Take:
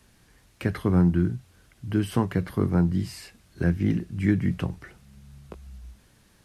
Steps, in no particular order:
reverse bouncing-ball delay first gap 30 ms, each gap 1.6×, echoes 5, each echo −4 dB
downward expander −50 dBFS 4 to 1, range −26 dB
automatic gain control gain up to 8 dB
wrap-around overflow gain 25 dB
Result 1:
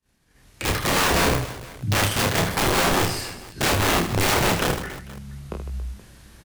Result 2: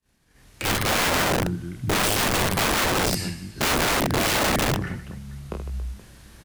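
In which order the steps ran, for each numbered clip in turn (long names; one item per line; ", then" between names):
wrap-around overflow, then automatic gain control, then reverse bouncing-ball delay, then downward expander
reverse bouncing-ball delay, then wrap-around overflow, then automatic gain control, then downward expander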